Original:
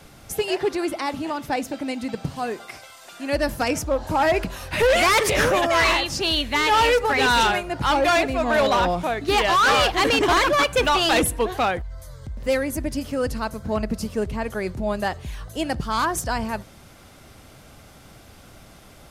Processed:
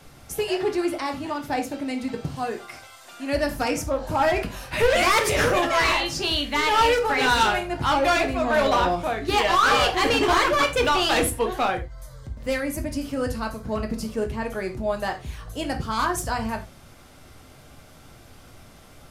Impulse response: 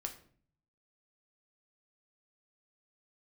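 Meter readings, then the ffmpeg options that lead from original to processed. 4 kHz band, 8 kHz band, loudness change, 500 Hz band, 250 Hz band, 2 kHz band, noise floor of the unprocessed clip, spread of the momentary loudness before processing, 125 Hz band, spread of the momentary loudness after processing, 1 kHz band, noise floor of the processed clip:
-2.0 dB, -2.0 dB, -1.5 dB, -1.5 dB, -1.5 dB, -1.5 dB, -48 dBFS, 12 LU, -1.0 dB, 12 LU, -1.0 dB, -49 dBFS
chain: -filter_complex "[1:a]atrim=start_sample=2205,atrim=end_sample=4410[a];[0:a][a]afir=irnorm=-1:irlink=0"

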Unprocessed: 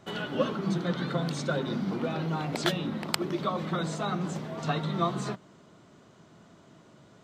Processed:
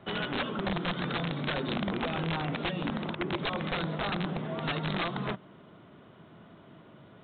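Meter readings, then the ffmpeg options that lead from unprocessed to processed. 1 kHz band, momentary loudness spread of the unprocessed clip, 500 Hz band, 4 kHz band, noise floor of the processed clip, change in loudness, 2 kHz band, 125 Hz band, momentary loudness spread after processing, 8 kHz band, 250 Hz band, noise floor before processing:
-1.5 dB, 4 LU, -3.0 dB, +1.0 dB, -54 dBFS, -1.5 dB, +3.0 dB, -2.5 dB, 2 LU, under -35 dB, -2.5 dB, -57 dBFS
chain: -filter_complex "[0:a]acrossover=split=100|2800[a][b][c];[a]acompressor=threshold=-57dB:ratio=4[d];[b]acompressor=threshold=-31dB:ratio=4[e];[c]acompressor=threshold=-44dB:ratio=4[f];[d][e][f]amix=inputs=3:normalize=0,aresample=8000,aeval=exprs='(mod(22.4*val(0)+1,2)-1)/22.4':c=same,aresample=44100,volume=2.5dB"

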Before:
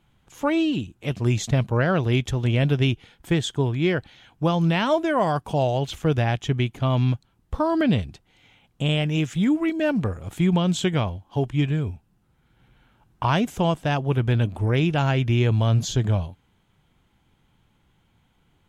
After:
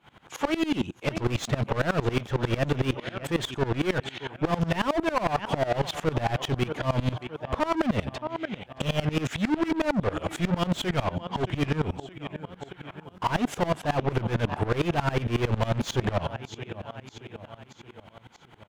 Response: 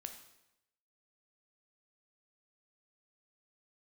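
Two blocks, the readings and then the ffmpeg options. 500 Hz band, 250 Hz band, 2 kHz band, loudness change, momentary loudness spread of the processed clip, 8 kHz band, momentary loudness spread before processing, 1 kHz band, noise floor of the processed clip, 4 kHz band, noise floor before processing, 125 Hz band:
-3.0 dB, -5.0 dB, -2.0 dB, -5.0 dB, 13 LU, -4.0 dB, 7 LU, -1.5 dB, -54 dBFS, -3.0 dB, -65 dBFS, -7.0 dB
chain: -filter_complex "[0:a]aecho=1:1:623|1246|1869|2492:0.0668|0.0368|0.0202|0.0111,asplit=2[a][b];[b]highpass=f=720:p=1,volume=36dB,asoftclip=type=tanh:threshold=-7.5dB[c];[a][c]amix=inputs=2:normalize=0,lowpass=f=1.6k:p=1,volume=-6dB,aeval=exprs='val(0)*pow(10,-22*if(lt(mod(-11*n/s,1),2*abs(-11)/1000),1-mod(-11*n/s,1)/(2*abs(-11)/1000),(mod(-11*n/s,1)-2*abs(-11)/1000)/(1-2*abs(-11)/1000))/20)':c=same,volume=-4.5dB"

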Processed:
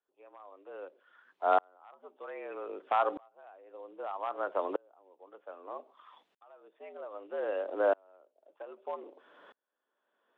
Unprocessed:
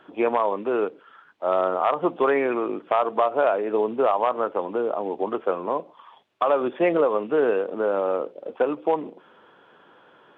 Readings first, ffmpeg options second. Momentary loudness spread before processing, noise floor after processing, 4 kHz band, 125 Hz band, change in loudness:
6 LU, -84 dBFS, n/a, under -25 dB, -11.0 dB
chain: -af "afreqshift=83,aeval=exprs='val(0)*pow(10,-39*if(lt(mod(-0.63*n/s,1),2*abs(-0.63)/1000),1-mod(-0.63*n/s,1)/(2*abs(-0.63)/1000),(mod(-0.63*n/s,1)-2*abs(-0.63)/1000)/(1-2*abs(-0.63)/1000))/20)':c=same,volume=-1.5dB"

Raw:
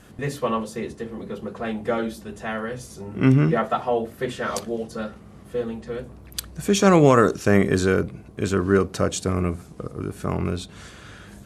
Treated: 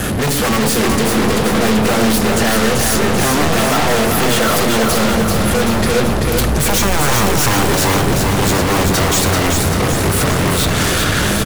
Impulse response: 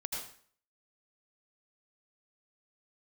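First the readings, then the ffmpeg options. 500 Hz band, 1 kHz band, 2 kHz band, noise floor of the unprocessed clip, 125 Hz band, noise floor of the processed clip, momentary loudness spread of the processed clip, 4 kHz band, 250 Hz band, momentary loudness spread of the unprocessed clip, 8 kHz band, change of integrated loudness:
+6.5 dB, +10.5 dB, +13.5 dB, -45 dBFS, +8.5 dB, -16 dBFS, 2 LU, +18.5 dB, +8.0 dB, 16 LU, +18.0 dB, +9.0 dB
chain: -filter_complex "[0:a]equalizer=f=11k:t=o:w=0.22:g=7.5,bandreject=f=1k:w=12,acrossover=split=200|4500[a][b][c];[b]alimiter=limit=-16dB:level=0:latency=1:release=209[d];[a][d][c]amix=inputs=3:normalize=0,aeval=exprs='0.708*sin(PI/2*10*val(0)/0.708)':c=same,aeval=exprs='0.75*(cos(1*acos(clip(val(0)/0.75,-1,1)))-cos(1*PI/2))+0.106*(cos(5*acos(clip(val(0)/0.75,-1,1)))-cos(5*PI/2))+0.211*(cos(6*acos(clip(val(0)/0.75,-1,1)))-cos(6*PI/2))':c=same,asoftclip=type=hard:threshold=-18.5dB,asplit=2[e][f];[f]aecho=0:1:387|774|1161|1548|1935|2322|2709|3096:0.631|0.366|0.212|0.123|0.0714|0.0414|0.024|0.0139[g];[e][g]amix=inputs=2:normalize=0,volume=4dB"

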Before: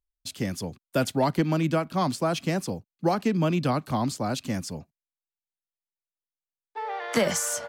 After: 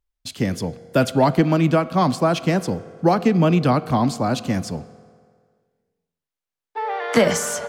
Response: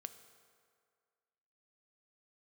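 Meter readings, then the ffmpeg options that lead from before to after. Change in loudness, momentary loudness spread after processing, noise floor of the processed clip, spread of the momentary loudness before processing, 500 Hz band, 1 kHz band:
+7.0 dB, 12 LU, under -85 dBFS, 11 LU, +7.5 dB, +7.0 dB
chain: -filter_complex "[0:a]asplit=2[a][b];[b]aemphasis=mode=reproduction:type=50fm[c];[1:a]atrim=start_sample=2205[d];[c][d]afir=irnorm=-1:irlink=0,volume=7dB[e];[a][e]amix=inputs=2:normalize=0"

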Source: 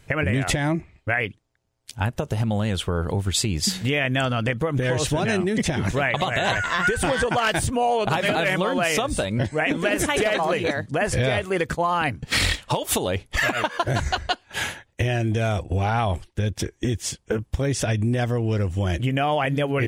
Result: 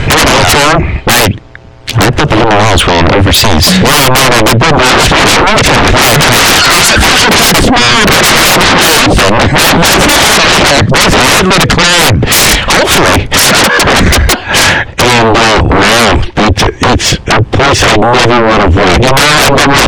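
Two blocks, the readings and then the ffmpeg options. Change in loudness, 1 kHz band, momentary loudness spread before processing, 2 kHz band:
+18.5 dB, +19.0 dB, 5 LU, +19.0 dB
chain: -filter_complex "[0:a]lowpass=3.1k,asplit=2[a][b];[b]acompressor=threshold=-33dB:ratio=6,volume=0.5dB[c];[a][c]amix=inputs=2:normalize=0,aeval=exprs='0.422*sin(PI/2*8.91*val(0)/0.422)':c=same,alimiter=level_in=15dB:limit=-1dB:release=50:level=0:latency=1,volume=-1dB"

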